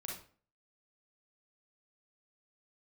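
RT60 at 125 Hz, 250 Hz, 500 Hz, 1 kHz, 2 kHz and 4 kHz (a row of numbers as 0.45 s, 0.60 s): 0.50 s, 0.50 s, 0.45 s, 0.40 s, 0.40 s, 0.35 s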